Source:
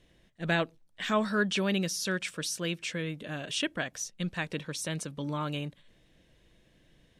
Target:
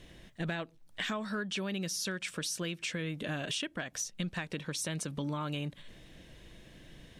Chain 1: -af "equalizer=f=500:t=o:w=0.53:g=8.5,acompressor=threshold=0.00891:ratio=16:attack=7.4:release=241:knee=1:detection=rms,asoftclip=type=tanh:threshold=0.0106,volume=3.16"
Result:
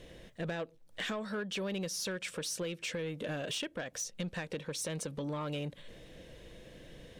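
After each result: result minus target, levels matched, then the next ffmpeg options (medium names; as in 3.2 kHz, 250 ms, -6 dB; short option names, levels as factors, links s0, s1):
saturation: distortion +18 dB; 500 Hz band +4.5 dB
-af "equalizer=f=500:t=o:w=0.53:g=8.5,acompressor=threshold=0.00891:ratio=16:attack=7.4:release=241:knee=1:detection=rms,asoftclip=type=tanh:threshold=0.0376,volume=3.16"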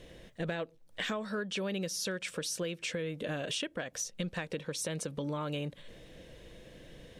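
500 Hz band +4.5 dB
-af "equalizer=f=500:t=o:w=0.53:g=-2,acompressor=threshold=0.00891:ratio=16:attack=7.4:release=241:knee=1:detection=rms,asoftclip=type=tanh:threshold=0.0376,volume=3.16"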